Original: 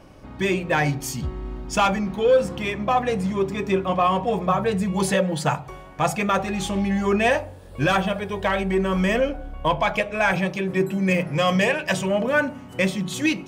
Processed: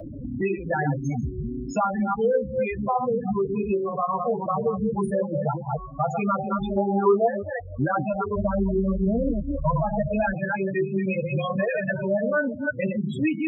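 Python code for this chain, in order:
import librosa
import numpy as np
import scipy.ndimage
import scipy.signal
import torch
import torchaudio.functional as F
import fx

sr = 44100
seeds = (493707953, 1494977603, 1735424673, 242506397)

y = fx.reverse_delay(x, sr, ms=165, wet_db=-5)
y = fx.spec_box(y, sr, start_s=6.77, length_s=0.5, low_hz=380.0, high_hz=1600.0, gain_db=11)
y = fx.bass_treble(y, sr, bass_db=12, treble_db=-11, at=(8.36, 10.33))
y = fx.spec_topn(y, sr, count=8)
y = fx.notch_comb(y, sr, f0_hz=180.0)
y = fx.band_squash(y, sr, depth_pct=70)
y = y * 10.0 ** (-1.0 / 20.0)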